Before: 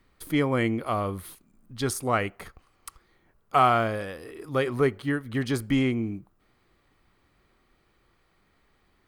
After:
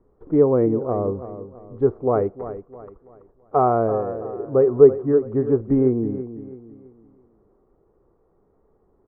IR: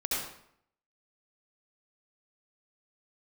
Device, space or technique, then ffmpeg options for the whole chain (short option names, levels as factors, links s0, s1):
under water: -filter_complex "[0:a]lowpass=f=990:w=0.5412,lowpass=f=990:w=1.3066,equalizer=f=430:t=o:w=0.59:g=11.5,asettb=1/sr,asplit=3[s0][s1][s2];[s0]atrim=end=0.664[s3];[s1]atrim=start=0.66:end=1.21,asetpts=PTS-STARTPTS,afade=t=in:d=0.004:c=qsin,afade=t=out:st=0.546:d=0.004:c=qsin,lowpass=f=1100:p=1[s4];[s2]atrim=start=1.206[s5];[s3][s4]acrossfade=d=0.004:c1=hsin:c2=qsin[s6];[s6][s5]acrossfade=d=0.004:c1=qsin:c2=hsin,aecho=1:1:331|662|993|1324:0.237|0.0877|0.0325|0.012,volume=1.33"